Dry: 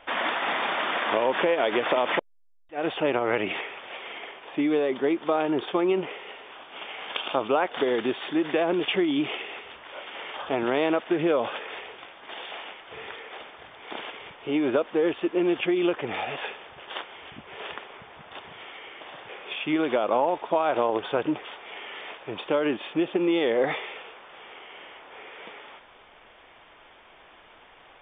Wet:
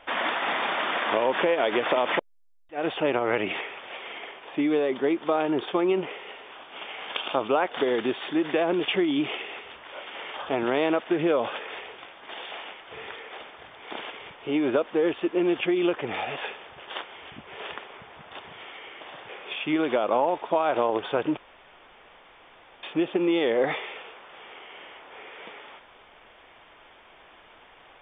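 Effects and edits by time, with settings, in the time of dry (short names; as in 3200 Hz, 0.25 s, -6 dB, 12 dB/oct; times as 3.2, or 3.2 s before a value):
21.37–22.83 room tone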